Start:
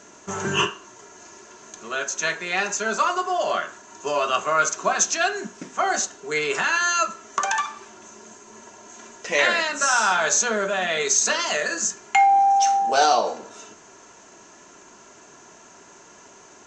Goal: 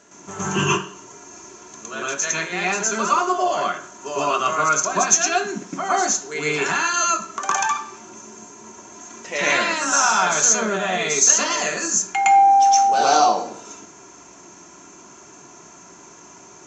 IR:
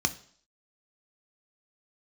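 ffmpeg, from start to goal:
-filter_complex "[0:a]asplit=2[a][b];[1:a]atrim=start_sample=2205,adelay=112[c];[b][c]afir=irnorm=-1:irlink=0,volume=-2dB[d];[a][d]amix=inputs=2:normalize=0,volume=-5dB"

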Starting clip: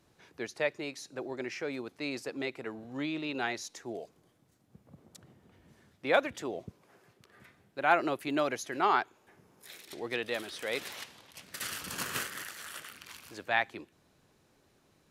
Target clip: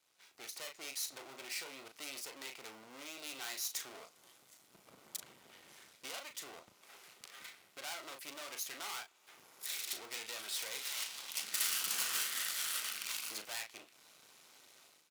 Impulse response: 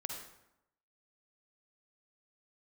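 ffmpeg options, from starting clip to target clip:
-filter_complex "[0:a]lowpass=f=2.2k:p=1,aeval=exprs='max(val(0),0)':c=same,dynaudnorm=f=400:g=3:m=16dB,asettb=1/sr,asplit=3[a][b][c];[a]atrim=end=11.234[d];[b]atrim=start=11.23:end=13.42,asetpts=PTS-STARTPTS,afade=t=in:d=0.004:c=qsin,afade=t=out:st=2.186:d=0.004:c=qsin,lowshelf=f=120:t=q:w=1.5:g=-11[e];[c]atrim=start=13.416[f];[d][e]acrossfade=d=0.004:c1=hsin:c2=qsin[g];[g][f]acrossfade=d=0.004:c1=qsin:c2=hsin,acompressor=threshold=-36dB:ratio=2.5,asplit=2[h][i];[i]adelay=37,volume=-9dB[j];[h][j]amix=inputs=2:normalize=0,asoftclip=type=tanh:threshold=-30.5dB,aderivative,bandreject=f=1.7k:w=11,volume=11dB"

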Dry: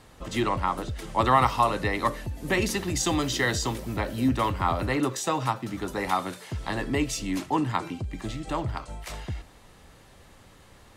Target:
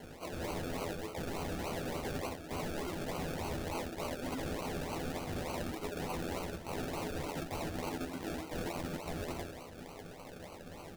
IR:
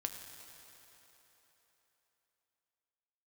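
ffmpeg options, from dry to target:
-filter_complex "[1:a]atrim=start_sample=2205,atrim=end_sample=3528,asetrate=38808,aresample=44100[a];[0:a][a]afir=irnorm=-1:irlink=0,flanger=delay=18:depth=7:speed=1,highpass=440,lowpass=5.2k,aecho=1:1:88|176|264|352:0.355|0.138|0.054|0.021,asplit=2[b][c];[c]alimiter=limit=-21dB:level=0:latency=1:release=467,volume=-1dB[d];[b][d]amix=inputs=2:normalize=0,acrusher=samples=35:mix=1:aa=0.000001:lfo=1:lforange=21:lforate=3.4,aeval=exprs='(mod(18.8*val(0)+1,2)-1)/18.8':c=same,asplit=2[e][f];[f]adelay=12,volume=-7dB[g];[e][g]amix=inputs=2:normalize=0,areverse,acompressor=threshold=-41dB:ratio=12,areverse,volume=5.5dB"

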